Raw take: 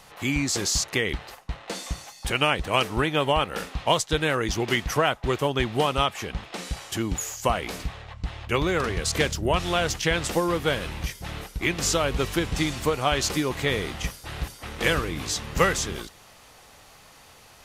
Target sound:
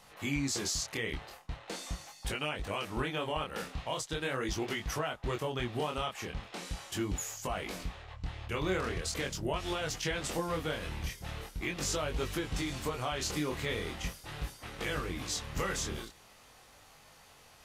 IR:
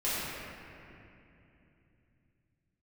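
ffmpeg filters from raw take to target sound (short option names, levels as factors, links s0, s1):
-af "alimiter=limit=0.15:level=0:latency=1:release=132,flanger=delay=19.5:depth=7.5:speed=0.41,volume=0.631"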